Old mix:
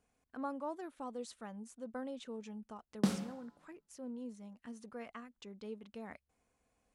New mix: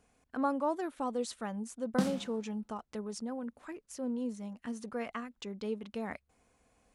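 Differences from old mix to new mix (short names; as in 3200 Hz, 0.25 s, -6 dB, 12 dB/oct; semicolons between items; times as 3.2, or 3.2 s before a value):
speech +9.0 dB; background: entry -1.05 s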